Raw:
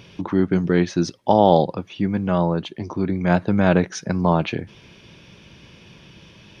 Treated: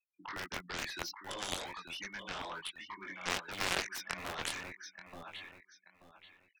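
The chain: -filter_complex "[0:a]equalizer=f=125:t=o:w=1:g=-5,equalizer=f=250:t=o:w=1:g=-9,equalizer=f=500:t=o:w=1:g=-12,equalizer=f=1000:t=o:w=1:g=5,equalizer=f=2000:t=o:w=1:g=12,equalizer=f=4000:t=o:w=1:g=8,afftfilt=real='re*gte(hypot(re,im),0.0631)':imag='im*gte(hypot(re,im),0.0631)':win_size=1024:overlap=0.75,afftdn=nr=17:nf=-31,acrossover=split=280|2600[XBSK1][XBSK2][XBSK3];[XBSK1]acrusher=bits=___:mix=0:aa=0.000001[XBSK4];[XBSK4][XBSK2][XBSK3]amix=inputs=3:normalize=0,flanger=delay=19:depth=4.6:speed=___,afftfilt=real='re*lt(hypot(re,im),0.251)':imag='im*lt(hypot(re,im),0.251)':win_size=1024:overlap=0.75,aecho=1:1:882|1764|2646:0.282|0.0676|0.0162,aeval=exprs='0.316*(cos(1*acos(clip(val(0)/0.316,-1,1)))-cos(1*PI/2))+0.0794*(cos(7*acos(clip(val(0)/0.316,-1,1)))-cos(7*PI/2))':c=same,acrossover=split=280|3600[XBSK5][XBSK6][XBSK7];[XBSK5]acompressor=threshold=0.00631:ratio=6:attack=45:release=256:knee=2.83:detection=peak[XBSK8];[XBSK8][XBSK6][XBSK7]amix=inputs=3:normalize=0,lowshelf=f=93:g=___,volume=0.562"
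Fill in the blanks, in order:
3, 2.3, 2.5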